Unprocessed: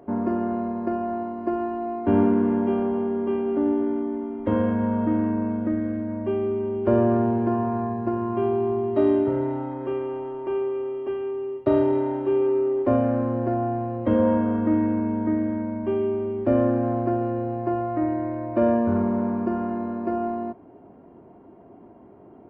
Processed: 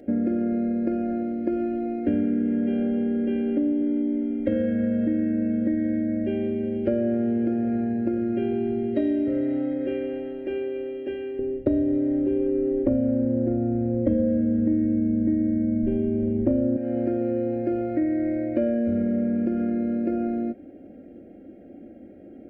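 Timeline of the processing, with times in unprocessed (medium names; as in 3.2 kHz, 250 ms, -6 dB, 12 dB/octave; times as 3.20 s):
11.39–16.77 s: tilt EQ -4 dB/octave
whole clip: Chebyshev band-stop 580–1800 Hz, order 2; comb 3.7 ms, depth 62%; compression, threshold -24 dBFS; trim +3.5 dB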